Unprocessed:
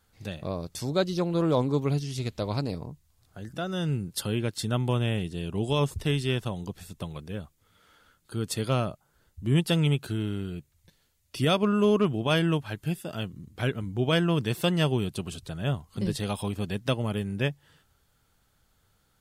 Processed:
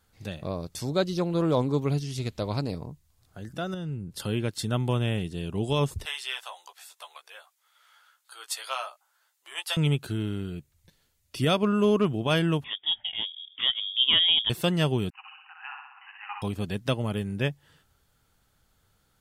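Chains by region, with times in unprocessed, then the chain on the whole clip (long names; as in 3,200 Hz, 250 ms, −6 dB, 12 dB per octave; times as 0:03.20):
0:03.74–0:04.20: spectral tilt −1.5 dB per octave + downward compressor 2.5 to 1, threshold −35 dBFS
0:06.05–0:09.77: inverse Chebyshev high-pass filter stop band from 230 Hz, stop band 60 dB + double-tracking delay 15 ms −5.5 dB
0:12.64–0:14.50: high-pass filter 280 Hz + spectral tilt −4 dB per octave + voice inversion scrambler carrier 3,500 Hz
0:15.10–0:16.42: linear-phase brick-wall band-pass 750–3,000 Hz + flutter between parallel walls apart 10.7 metres, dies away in 0.89 s
whole clip: no processing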